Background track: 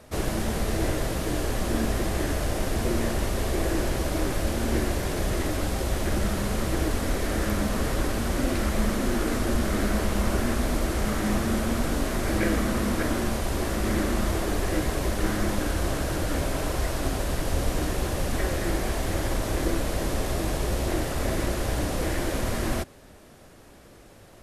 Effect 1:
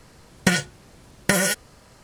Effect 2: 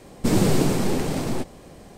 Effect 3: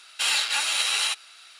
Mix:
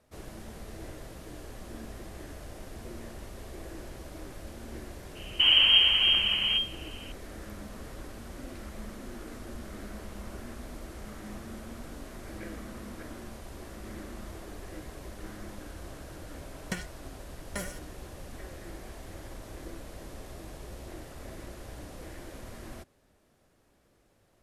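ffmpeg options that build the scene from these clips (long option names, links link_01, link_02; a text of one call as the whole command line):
ffmpeg -i bed.wav -i cue0.wav -i cue1.wav -filter_complex "[0:a]volume=-17dB[link_01];[2:a]lowpass=frequency=2700:width_type=q:width=0.5098,lowpass=frequency=2700:width_type=q:width=0.6013,lowpass=frequency=2700:width_type=q:width=0.9,lowpass=frequency=2700:width_type=q:width=2.563,afreqshift=-3200[link_02];[1:a]aeval=exprs='val(0)*pow(10,-33*if(lt(mod(2.3*n/s,1),2*abs(2.3)/1000),1-mod(2.3*n/s,1)/(2*abs(2.3)/1000),(mod(2.3*n/s,1)-2*abs(2.3)/1000)/(1-2*abs(2.3)/1000))/20)':channel_layout=same[link_03];[link_02]atrim=end=1.97,asetpts=PTS-STARTPTS,volume=-2.5dB,afade=type=in:duration=0.004:curve=hsin,afade=type=out:start_time=1.966:duration=0.004:curve=hsin,adelay=5150[link_04];[link_03]atrim=end=2.03,asetpts=PTS-STARTPTS,volume=-12.5dB,afade=type=in:duration=0.004:curve=hsin,afade=type=out:start_time=2.026:duration=0.004:curve=hsin,adelay=16250[link_05];[link_01][link_04][link_05]amix=inputs=3:normalize=0" out.wav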